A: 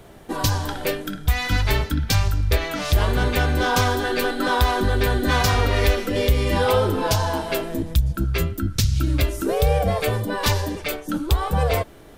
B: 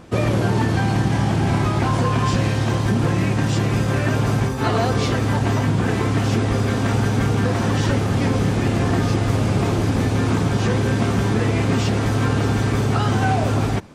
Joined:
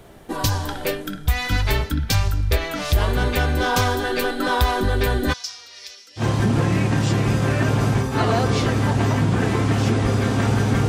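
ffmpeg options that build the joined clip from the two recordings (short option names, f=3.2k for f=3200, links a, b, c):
-filter_complex "[0:a]asplit=3[a][b][c];[a]afade=t=out:st=5.32:d=0.02[d];[b]bandpass=f=5.4k:t=q:w=4:csg=0,afade=t=in:st=5.32:d=0.02,afade=t=out:st=6.24:d=0.02[e];[c]afade=t=in:st=6.24:d=0.02[f];[d][e][f]amix=inputs=3:normalize=0,apad=whole_dur=10.88,atrim=end=10.88,atrim=end=6.24,asetpts=PTS-STARTPTS[g];[1:a]atrim=start=2.62:end=7.34,asetpts=PTS-STARTPTS[h];[g][h]acrossfade=d=0.08:c1=tri:c2=tri"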